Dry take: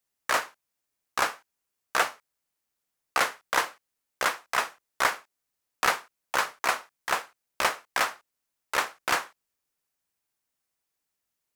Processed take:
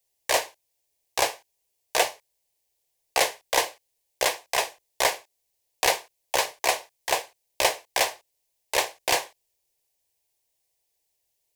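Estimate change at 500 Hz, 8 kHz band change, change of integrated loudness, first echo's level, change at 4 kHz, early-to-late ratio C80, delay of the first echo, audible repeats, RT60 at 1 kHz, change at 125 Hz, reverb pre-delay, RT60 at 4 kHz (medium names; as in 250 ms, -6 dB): +7.0 dB, +7.0 dB, +2.5 dB, no echo, +6.0 dB, no reverb, no echo, no echo, no reverb, +3.0 dB, no reverb, no reverb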